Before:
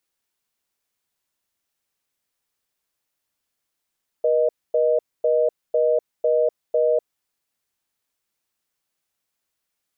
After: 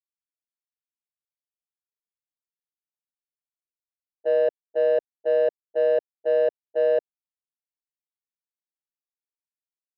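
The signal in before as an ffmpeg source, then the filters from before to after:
-f lavfi -i "aevalsrc='0.119*(sin(2*PI*480*t)+sin(2*PI*620*t))*clip(min(mod(t,0.5),0.25-mod(t,0.5))/0.005,0,1)':duration=2.81:sample_rate=44100"
-af "agate=range=-26dB:threshold=-19dB:ratio=16:detection=peak,adynamicsmooth=sensitivity=1:basefreq=730"

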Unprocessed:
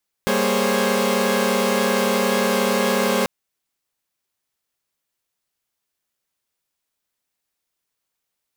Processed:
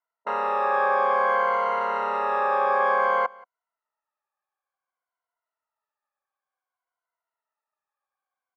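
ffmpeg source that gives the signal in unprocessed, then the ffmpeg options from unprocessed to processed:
-f lavfi -i "aevalsrc='0.0841*((2*mod(196*t,1)-1)+(2*mod(233.08*t,1)-1)+(2*mod(415.3*t,1)-1)+(2*mod(523.25*t,1)-1)+(2*mod(554.37*t,1)-1))':duration=2.99:sample_rate=44100"
-af "afftfilt=real='re*pow(10,17/40*sin(2*PI*(1.9*log(max(b,1)*sr/1024/100)/log(2)-(-0.56)*(pts-256)/sr)))':imag='im*pow(10,17/40*sin(2*PI*(1.9*log(max(b,1)*sr/1024/100)/log(2)-(-0.56)*(pts-256)/sr)))':win_size=1024:overlap=0.75,asuperpass=centerf=990:order=4:qfactor=1.2,aecho=1:1:178:0.0631"

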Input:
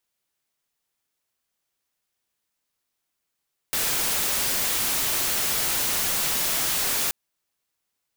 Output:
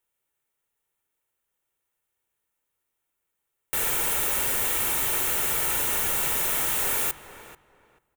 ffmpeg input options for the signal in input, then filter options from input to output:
-f lavfi -i "anoisesrc=color=white:amplitude=0.103:duration=3.38:sample_rate=44100:seed=1"
-filter_complex "[0:a]equalizer=frequency=4800:width_type=o:width=0.77:gain=-13.5,aecho=1:1:2.2:0.34,asplit=2[link_01][link_02];[link_02]adelay=438,lowpass=frequency=2100:poles=1,volume=-12dB,asplit=2[link_03][link_04];[link_04]adelay=438,lowpass=frequency=2100:poles=1,volume=0.22,asplit=2[link_05][link_06];[link_06]adelay=438,lowpass=frequency=2100:poles=1,volume=0.22[link_07];[link_01][link_03][link_05][link_07]amix=inputs=4:normalize=0"

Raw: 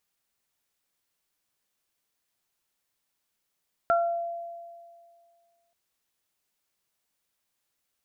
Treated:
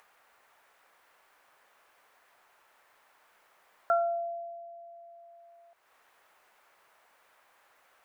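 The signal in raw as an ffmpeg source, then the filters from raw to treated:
-f lavfi -i "aevalsrc='0.106*pow(10,-3*t/2.06)*sin(2*PI*683*t)+0.0944*pow(10,-3*t/0.39)*sin(2*PI*1366*t)':duration=1.83:sample_rate=44100"
-filter_complex "[0:a]acrossover=split=500 2000:gain=0.0891 1 0.0891[link_01][link_02][link_03];[link_01][link_02][link_03]amix=inputs=3:normalize=0,acompressor=mode=upward:threshold=-43dB:ratio=2.5"

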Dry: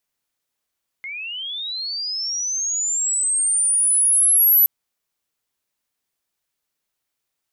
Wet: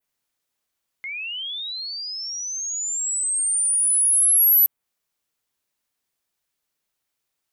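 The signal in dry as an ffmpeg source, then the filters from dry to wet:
-f lavfi -i "aevalsrc='pow(10,(-28.5+18*t/3.62)/20)*sin(2*PI*(2100*t+9900*t*t/(2*3.62)))':duration=3.62:sample_rate=44100"
-af "adynamicequalizer=threshold=0.0141:dfrequency=5300:dqfactor=0.88:tfrequency=5300:tqfactor=0.88:attack=5:release=100:ratio=0.375:range=3:mode=cutabove:tftype=bell,asoftclip=type=hard:threshold=-12.5dB"

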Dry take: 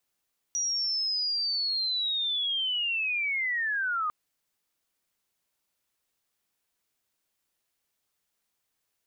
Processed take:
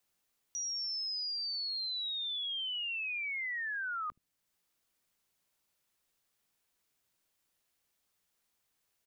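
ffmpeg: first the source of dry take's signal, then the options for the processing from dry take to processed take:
-f lavfi -i "aevalsrc='0.0501*sin(2*PI*(5800*t-4600*t*t/(2*3.55)))':duration=3.55:sample_rate=44100"
-filter_complex "[0:a]acrossover=split=270[link_01][link_02];[link_01]aecho=1:1:17|74:0.596|0.282[link_03];[link_02]alimiter=level_in=10dB:limit=-24dB:level=0:latency=1:release=492,volume=-10dB[link_04];[link_03][link_04]amix=inputs=2:normalize=0"

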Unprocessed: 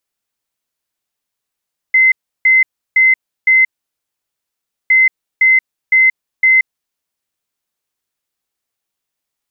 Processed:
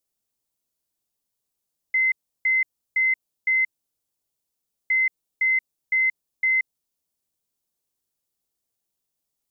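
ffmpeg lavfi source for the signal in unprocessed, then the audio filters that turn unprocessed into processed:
-f lavfi -i "aevalsrc='0.501*sin(2*PI*2060*t)*clip(min(mod(mod(t,2.96),0.51),0.18-mod(mod(t,2.96),0.51))/0.005,0,1)*lt(mod(t,2.96),2.04)':duration=5.92:sample_rate=44100"
-af "equalizer=frequency=1800:width_type=o:width=2.2:gain=-11.5"

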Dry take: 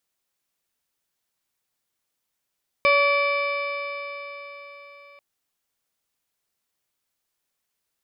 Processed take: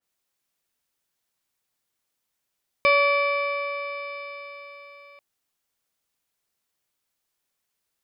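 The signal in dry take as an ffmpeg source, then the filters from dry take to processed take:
-f lavfi -i "aevalsrc='0.119*pow(10,-3*t/4.24)*sin(2*PI*567.96*t)+0.0944*pow(10,-3*t/4.24)*sin(2*PI*1141.69*t)+0.0158*pow(10,-3*t/4.24)*sin(2*PI*1726.83*t)+0.133*pow(10,-3*t/4.24)*sin(2*PI*2328.87*t)+0.0158*pow(10,-3*t/4.24)*sin(2*PI*2953.03*t)+0.0188*pow(10,-3*t/4.24)*sin(2*PI*3604.19*t)+0.0119*pow(10,-3*t/4.24)*sin(2*PI*4286.89*t)+0.0168*pow(10,-3*t/4.24)*sin(2*PI*5005.25*t)':duration=2.34:sample_rate=44100"
-af "adynamicequalizer=threshold=0.02:dfrequency=2500:dqfactor=0.7:tfrequency=2500:tqfactor=0.7:attack=5:release=100:ratio=0.375:range=3:mode=cutabove:tftype=highshelf"

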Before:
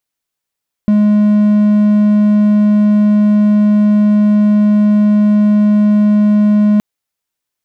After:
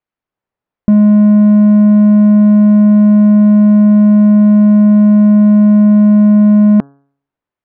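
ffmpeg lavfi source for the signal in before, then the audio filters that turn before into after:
-f lavfi -i "aevalsrc='0.596*(1-4*abs(mod(209*t+0.25,1)-0.5))':duration=5.92:sample_rate=44100"
-filter_complex "[0:a]lowpass=1900,acrossover=split=1100[link_01][link_02];[link_01]dynaudnorm=framelen=170:gausssize=3:maxgain=6dB[link_03];[link_03][link_02]amix=inputs=2:normalize=0,bandreject=frequency=139.5:width_type=h:width=4,bandreject=frequency=279:width_type=h:width=4,bandreject=frequency=418.5:width_type=h:width=4,bandreject=frequency=558:width_type=h:width=4,bandreject=frequency=697.5:width_type=h:width=4,bandreject=frequency=837:width_type=h:width=4,bandreject=frequency=976.5:width_type=h:width=4,bandreject=frequency=1116:width_type=h:width=4,bandreject=frequency=1255.5:width_type=h:width=4,bandreject=frequency=1395:width_type=h:width=4,bandreject=frequency=1534.5:width_type=h:width=4,bandreject=frequency=1674:width_type=h:width=4"

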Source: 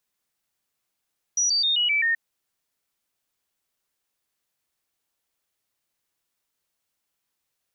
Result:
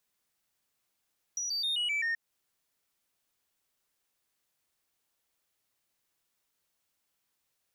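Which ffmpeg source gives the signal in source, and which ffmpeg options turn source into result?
-f lavfi -i "aevalsrc='0.112*clip(min(mod(t,0.13),0.13-mod(t,0.13))/0.005,0,1)*sin(2*PI*5830*pow(2,-floor(t/0.13)/3)*mod(t,0.13))':duration=0.78:sample_rate=44100"
-filter_complex "[0:a]acrossover=split=3000[link_01][link_02];[link_02]acompressor=threshold=-36dB:ratio=6[link_03];[link_01][link_03]amix=inputs=2:normalize=0,alimiter=level_in=1.5dB:limit=-24dB:level=0:latency=1:release=181,volume=-1.5dB,asoftclip=type=tanh:threshold=-27dB"

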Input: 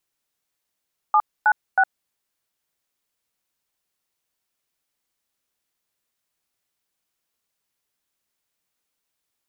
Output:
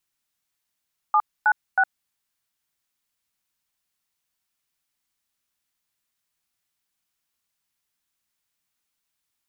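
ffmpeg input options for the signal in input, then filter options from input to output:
-f lavfi -i "aevalsrc='0.168*clip(min(mod(t,0.318),0.061-mod(t,0.318))/0.002,0,1)*(eq(floor(t/0.318),0)*(sin(2*PI*852*mod(t,0.318))+sin(2*PI*1209*mod(t,0.318)))+eq(floor(t/0.318),1)*(sin(2*PI*852*mod(t,0.318))+sin(2*PI*1477*mod(t,0.318)))+eq(floor(t/0.318),2)*(sin(2*PI*770*mod(t,0.318))+sin(2*PI*1477*mod(t,0.318))))':duration=0.954:sample_rate=44100"
-af "equalizer=frequency=480:width_type=o:width=1.2:gain=-8"

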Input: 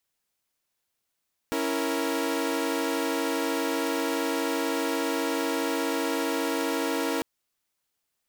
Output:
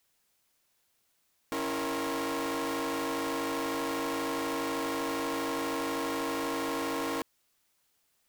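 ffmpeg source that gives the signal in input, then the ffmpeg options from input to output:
-f lavfi -i "aevalsrc='0.0422*((2*mod(277.18*t,1)-1)+(2*mod(329.63*t,1)-1)+(2*mod(466.16*t,1)-1))':duration=5.7:sample_rate=44100"
-filter_complex "[0:a]asplit=2[link_01][link_02];[link_02]alimiter=level_in=1.5dB:limit=-24dB:level=0:latency=1:release=38,volume=-1.5dB,volume=1.5dB[link_03];[link_01][link_03]amix=inputs=2:normalize=0,volume=31.5dB,asoftclip=hard,volume=-31.5dB"

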